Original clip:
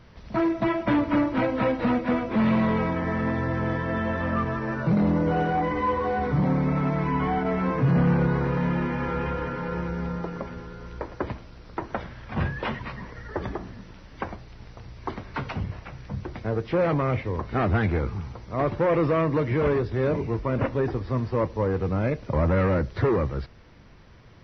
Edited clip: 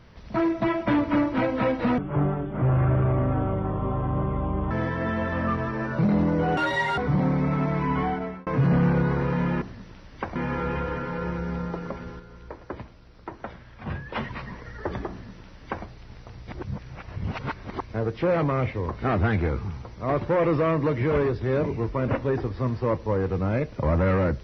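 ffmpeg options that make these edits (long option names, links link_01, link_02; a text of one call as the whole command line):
ffmpeg -i in.wav -filter_complex "[0:a]asplit=12[link_01][link_02][link_03][link_04][link_05][link_06][link_07][link_08][link_09][link_10][link_11][link_12];[link_01]atrim=end=1.984[link_13];[link_02]atrim=start=1.98:end=3.59,asetpts=PTS-STARTPTS,asetrate=26019,aresample=44100[link_14];[link_03]atrim=start=3.586:end=5.454[link_15];[link_04]atrim=start=5.45:end=6.22,asetpts=PTS-STARTPTS,asetrate=83349,aresample=44100[link_16];[link_05]atrim=start=6.216:end=7.71,asetpts=PTS-STARTPTS,afade=type=out:start_time=1.064:duration=0.43[link_17];[link_06]atrim=start=7.71:end=8.862,asetpts=PTS-STARTPTS,afade=type=in:duration=0.004:curve=hsin[link_18];[link_07]atrim=start=13.608:end=14.352[link_19];[link_08]atrim=start=8.858:end=10.702[link_20];[link_09]atrim=start=10.698:end=12.662,asetpts=PTS-STARTPTS,volume=-6dB[link_21];[link_10]atrim=start=12.658:end=14.982[link_22];[link_11]atrim=start=14.978:end=16.402,asetpts=PTS-STARTPTS,areverse[link_23];[link_12]atrim=start=16.398[link_24];[link_13][link_14]acrossfade=duration=0.004:curve1=hsin:curve2=hsin[link_25];[link_25][link_15]acrossfade=duration=0.004:curve1=hsin:curve2=hsin[link_26];[link_26][link_16]acrossfade=duration=0.004:curve1=hsin:curve2=hsin[link_27];[link_17][link_18]concat=n=2:v=0:a=1[link_28];[link_27][link_28]acrossfade=duration=0.004:curve1=hsin:curve2=hsin[link_29];[link_29][link_19]acrossfade=duration=0.004:curve1=hsin:curve2=hsin[link_30];[link_30][link_20]acrossfade=duration=0.004:curve1=hsin:curve2=hsin[link_31];[link_31][link_21]acrossfade=duration=0.004:curve1=hsin:curve2=hsin[link_32];[link_32][link_22]acrossfade=duration=0.004:curve1=hsin:curve2=hsin[link_33];[link_33][link_23]acrossfade=duration=0.004:curve1=hsin:curve2=hsin[link_34];[link_34][link_24]acrossfade=duration=0.004:curve1=hsin:curve2=hsin" out.wav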